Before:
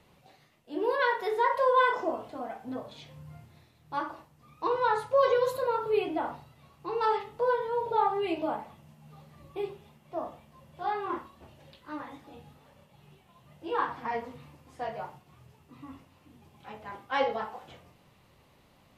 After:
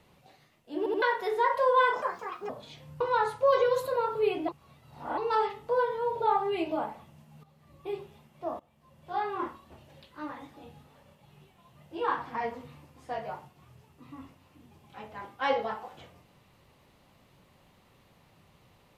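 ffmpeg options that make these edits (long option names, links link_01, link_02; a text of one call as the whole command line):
ffmpeg -i in.wav -filter_complex "[0:a]asplit=11[link_01][link_02][link_03][link_04][link_05][link_06][link_07][link_08][link_09][link_10][link_11];[link_01]atrim=end=0.862[link_12];[link_02]atrim=start=0.778:end=0.862[link_13];[link_03]atrim=start=0.778:end=0.862[link_14];[link_04]atrim=start=1.018:end=2.024[link_15];[link_05]atrim=start=2.02:end=2.78,asetpts=PTS-STARTPTS,asetrate=70560,aresample=44100[link_16];[link_06]atrim=start=2.776:end=3.292[link_17];[link_07]atrim=start=4.708:end=6.192[link_18];[link_08]atrim=start=6.188:end=6.882,asetpts=PTS-STARTPTS,areverse[link_19];[link_09]atrim=start=6.878:end=9.14,asetpts=PTS-STARTPTS,afade=type=out:start_time=2.258:duration=0.004:curve=hsin:silence=0.237137[link_20];[link_10]atrim=start=9.14:end=10.3,asetpts=PTS-STARTPTS,afade=type=in:duration=0.59:silence=0.237137,afade=type=out:start_time=1.156:duration=0.004:curve=hsin:silence=0.105925[link_21];[link_11]atrim=start=10.3,asetpts=PTS-STARTPTS,afade=type=in:duration=0.57:silence=0.105925[link_22];[link_12][link_13]acrossfade=duration=0.004:curve1=hsin:curve2=hsin[link_23];[link_23][link_14]acrossfade=duration=0.004:curve1=hsin:curve2=hsin[link_24];[link_24][link_15]acrossfade=duration=0.004:curve1=hsin:curve2=hsin[link_25];[link_25][link_16]acrossfade=duration=0.004:curve1=hsin:curve2=hsin[link_26];[link_26][link_17]acrossfade=duration=0.004:curve1=hsin:curve2=hsin[link_27];[link_27][link_18]acrossfade=duration=0.004:curve1=hsin:curve2=hsin[link_28];[link_28][link_19]acrossfade=duration=0.004:curve1=hsin:curve2=hsin[link_29];[link_20][link_21][link_22]concat=n=3:v=0:a=1[link_30];[link_29][link_30]acrossfade=duration=0.004:curve1=hsin:curve2=hsin" out.wav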